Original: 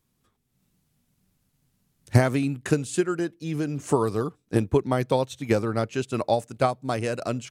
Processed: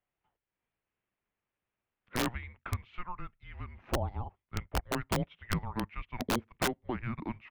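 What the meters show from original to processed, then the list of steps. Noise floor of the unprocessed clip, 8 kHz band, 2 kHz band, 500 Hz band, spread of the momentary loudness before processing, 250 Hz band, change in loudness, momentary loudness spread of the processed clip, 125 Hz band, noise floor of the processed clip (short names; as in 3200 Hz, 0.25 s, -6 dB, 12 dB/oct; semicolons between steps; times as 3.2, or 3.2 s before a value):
-73 dBFS, -6.5 dB, -5.5 dB, -16.0 dB, 6 LU, -11.5 dB, -11.0 dB, 11 LU, -11.5 dB, under -85 dBFS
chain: mistuned SSB -360 Hz 410–3100 Hz; wrapped overs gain 16 dB; gain -6.5 dB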